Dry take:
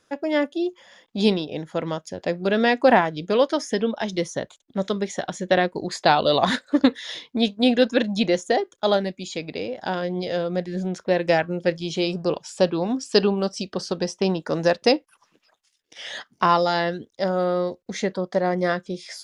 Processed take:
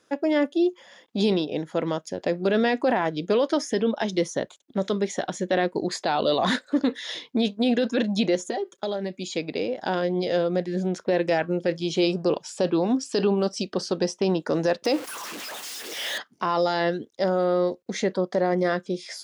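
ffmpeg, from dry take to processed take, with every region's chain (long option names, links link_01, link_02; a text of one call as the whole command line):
ffmpeg -i in.wav -filter_complex "[0:a]asettb=1/sr,asplit=3[link_01][link_02][link_03];[link_01]atrim=end=8.354[link_04];[link_02]atrim=start=8.35:end=9.17,asetpts=PTS-STARTPTS,afade=type=in:duration=0.004:curve=qsin,afade=type=out:start_time=0.816:duration=0.004:curve=qsin,aecho=1:1:5.2:0.7,atrim=end_sample=36162,acompressor=threshold=-26dB:ratio=10:attack=3.2:release=140:knee=1:detection=peak[link_05];[link_03]atrim=start=9.166[link_06];[link_04][link_05]acrossfade=duration=0.004:curve1=hsin:curve2=qsin[link_07];[link_07][link_06]acrossfade=duration=0.004:curve1=qsin:curve2=hsin,asettb=1/sr,asplit=3[link_08][link_09][link_10];[link_08]atrim=end=14.854[link_11];[link_09]atrim=start=14.85:end=16.18,asetpts=PTS-STARTPTS,afade=type=in:duration=0.004:curve=qsin,afade=type=out:start_time=1.326:duration=0.004:curve=qsin,aeval=exprs='val(0)+0.5*0.0316*sgn(val(0))':channel_layout=same,highpass=frequency=320:poles=1[link_12];[link_10]atrim=start=16.176[link_13];[link_11][link_12]acrossfade=duration=0.004:curve1=hsin:curve2=qsin[link_14];[link_14][link_13]acrossfade=duration=0.004:curve1=qsin:curve2=hsin,highpass=frequency=140:poles=1,equalizer=frequency=330:width_type=o:width=1.5:gain=4,alimiter=limit=-13.5dB:level=0:latency=1:release=15" out.wav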